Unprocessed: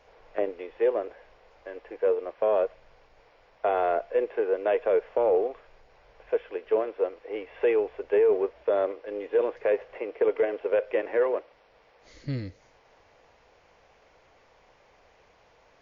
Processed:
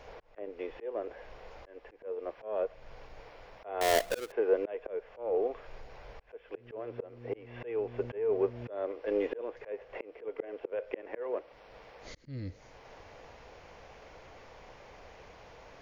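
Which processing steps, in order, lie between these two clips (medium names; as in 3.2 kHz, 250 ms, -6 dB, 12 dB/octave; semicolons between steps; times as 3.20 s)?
3.81–4.32 s: square wave that keeps the level; bass shelf 310 Hz +5 dB; 6.56–8.69 s: mains buzz 120 Hz, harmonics 4, -45 dBFS -4 dB/octave; in parallel at +0.5 dB: compression, threshold -32 dBFS, peak gain reduction 15 dB; on the sum: slow attack 598 ms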